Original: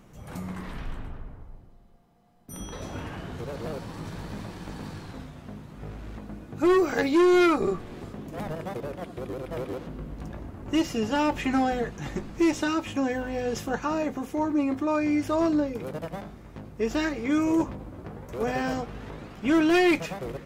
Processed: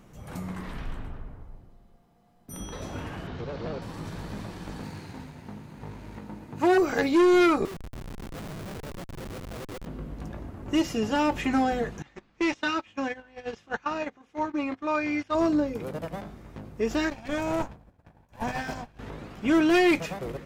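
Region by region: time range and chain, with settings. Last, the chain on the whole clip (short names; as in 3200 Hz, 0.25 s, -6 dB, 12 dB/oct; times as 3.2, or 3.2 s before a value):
3.27–3.82 LPF 5300 Hz 24 dB/oct + mismatched tape noise reduction encoder only
4.82–6.78 minimum comb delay 0.45 ms + HPF 73 Hz + bell 920 Hz +10 dB 0.21 oct
7.65–9.86 upward compressor, threshold -35 dBFS + tremolo saw up 8 Hz, depth 70% + Schmitt trigger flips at -38.5 dBFS
12.02–15.35 LPF 4000 Hz + gate -28 dBFS, range -20 dB + tilt shelf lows -6.5 dB, about 850 Hz
17.1–18.99 minimum comb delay 1.2 ms + expander -31 dBFS
whole clip: dry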